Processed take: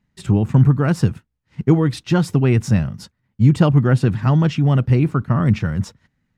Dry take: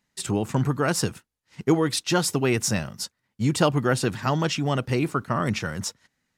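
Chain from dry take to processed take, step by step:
bass and treble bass +14 dB, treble −11 dB

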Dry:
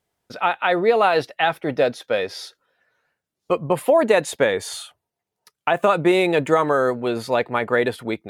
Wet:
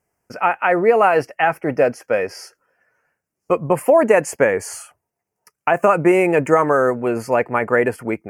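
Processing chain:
Butterworth band-reject 3,700 Hz, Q 1.4
level +3 dB

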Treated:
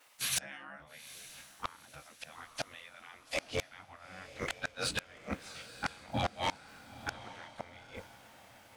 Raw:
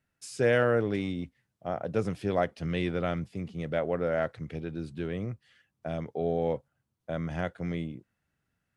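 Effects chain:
every overlapping window played backwards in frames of 46 ms
gate on every frequency bin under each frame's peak −15 dB weak
parametric band 380 Hz −14.5 dB 0.52 octaves
in parallel at 0 dB: downward compressor, threshold −40 dBFS, peak gain reduction 8 dB
on the sum: low-shelf EQ 92 Hz −6 dB
gate with flip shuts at −36 dBFS, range −35 dB
sine wavefolder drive 10 dB, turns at −33.5 dBFS
on a send: feedback delay with all-pass diffusion 904 ms, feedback 42%, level −14.5 dB
on the sum: level +8 dB

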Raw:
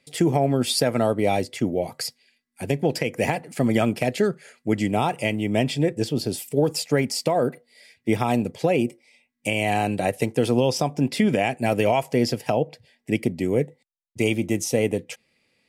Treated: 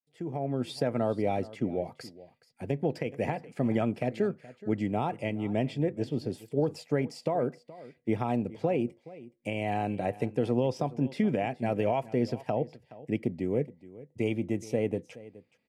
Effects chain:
fade in at the beginning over 0.74 s
low-pass filter 1,300 Hz 6 dB per octave
on a send: single-tap delay 422 ms −18.5 dB
on the sum: level −6.5 dB

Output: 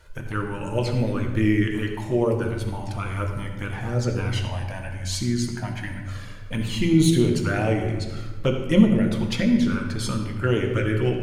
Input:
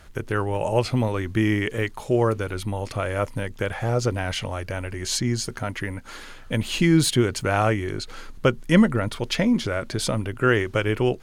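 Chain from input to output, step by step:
flanger swept by the level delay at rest 2.1 ms, full sweep at −15 dBFS
on a send: convolution reverb RT60 1.2 s, pre-delay 3 ms, DRR 1.5 dB
on the sum: level −2 dB

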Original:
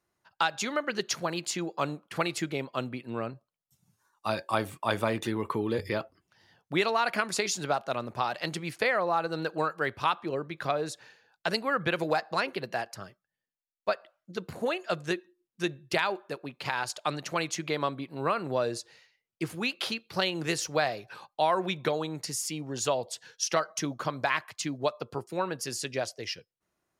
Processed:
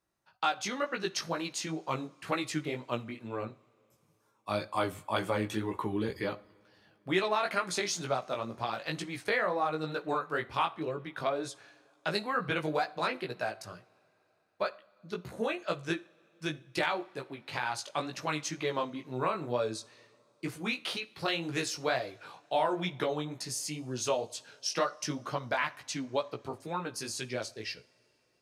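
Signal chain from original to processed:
chorus effect 2.2 Hz, delay 15 ms, depth 3.7 ms
coupled-rooms reverb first 0.38 s, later 3.7 s, from −21 dB, DRR 16 dB
speed change −5%

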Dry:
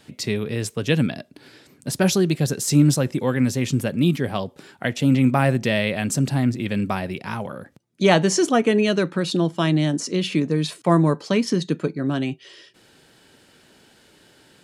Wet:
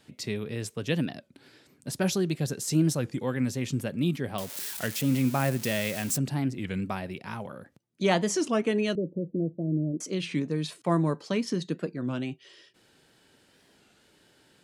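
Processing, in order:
0:04.38–0:06.18: spike at every zero crossing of −17.5 dBFS
0:08.95–0:10.01: Butterworth low-pass 570 Hz 48 dB per octave
wow of a warped record 33 1/3 rpm, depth 160 cents
level −8 dB

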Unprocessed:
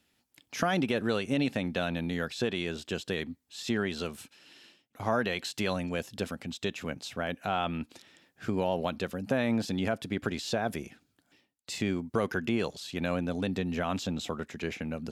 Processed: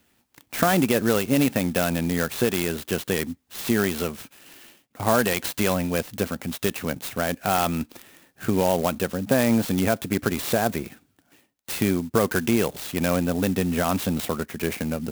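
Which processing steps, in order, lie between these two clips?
converter with an unsteady clock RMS 0.055 ms
level +8 dB

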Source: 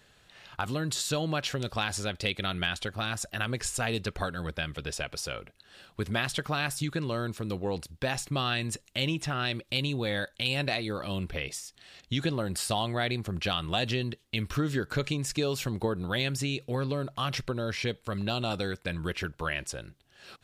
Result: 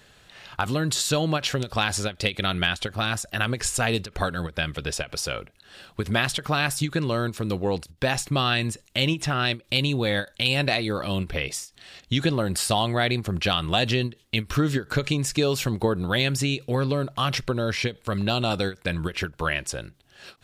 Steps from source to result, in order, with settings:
every ending faded ahead of time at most 290 dB per second
level +6.5 dB

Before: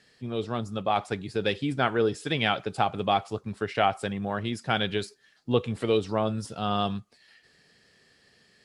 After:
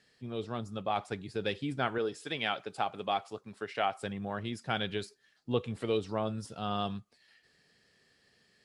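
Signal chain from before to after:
0:01.98–0:04.01: high-pass filter 330 Hz 6 dB per octave
level −6.5 dB

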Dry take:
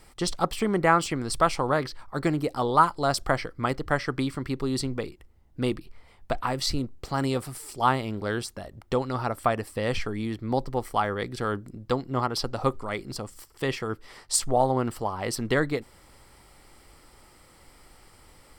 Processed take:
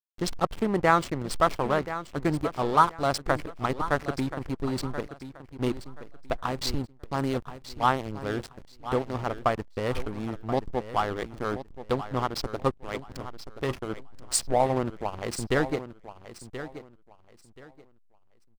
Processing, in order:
slack as between gear wheels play −24.5 dBFS
repeating echo 1,029 ms, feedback 24%, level −12.5 dB

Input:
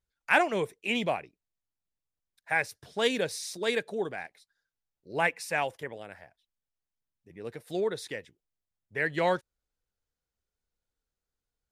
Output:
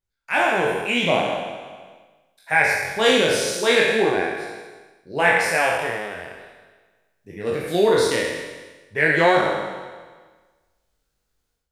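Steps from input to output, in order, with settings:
peak hold with a decay on every bin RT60 1.34 s
automatic gain control gain up to 13.5 dB
chorus effect 0.43 Hz, delay 19 ms, depth 5.8 ms
level +1 dB

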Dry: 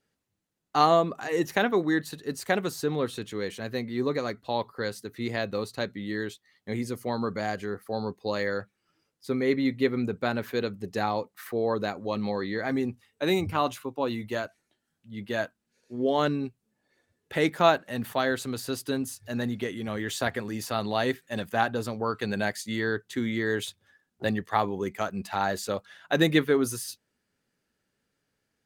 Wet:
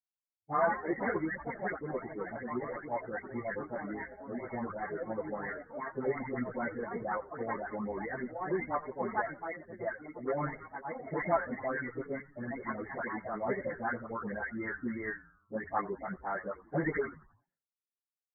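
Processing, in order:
every frequency bin delayed by itself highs late, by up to 551 ms
delay with pitch and tempo change per echo 287 ms, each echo +4 semitones, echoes 2, each echo −6 dB
downward expander −33 dBFS
reverb reduction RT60 0.66 s
parametric band 250 Hz −3 dB 2.4 octaves
soft clipping −17.5 dBFS, distortion −18 dB
time stretch by phase vocoder 0.64×
brick-wall band-pass 100–2,200 Hz
echo with shifted repeats 87 ms, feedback 46%, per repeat −130 Hz, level −18 dB

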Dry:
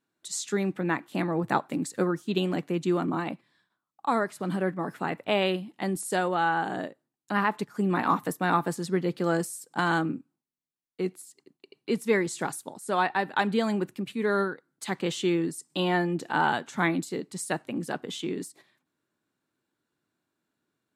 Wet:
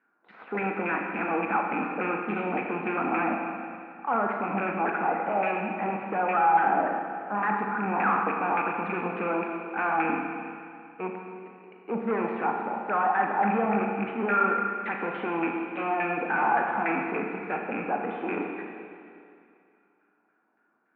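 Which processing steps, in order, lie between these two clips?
loose part that buzzes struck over −34 dBFS, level −15 dBFS
spectral tilt +2 dB per octave
transient designer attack −8 dB, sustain +3 dB
soft clipping −34.5 dBFS, distortion −3 dB
auto-filter low-pass saw down 3.5 Hz 830–1,800 Hz
loudspeaker in its box 190–2,700 Hz, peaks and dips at 210 Hz +10 dB, 320 Hz +5 dB, 470 Hz +7 dB, 770 Hz +9 dB, 1,400 Hz +7 dB, 2,400 Hz +8 dB
four-comb reverb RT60 2.4 s, combs from 27 ms, DRR 1.5 dB
level +2 dB

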